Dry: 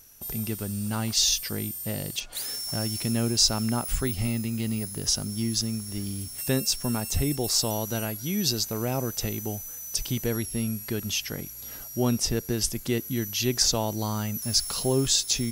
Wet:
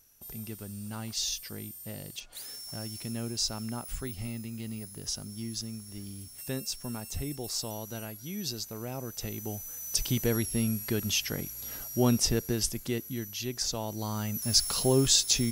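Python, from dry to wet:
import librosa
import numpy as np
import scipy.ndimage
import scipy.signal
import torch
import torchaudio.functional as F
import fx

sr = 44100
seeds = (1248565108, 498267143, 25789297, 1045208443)

y = fx.gain(x, sr, db=fx.line((9.0, -9.5), (9.96, 0.0), (12.24, 0.0), (13.57, -10.0), (14.57, 0.0)))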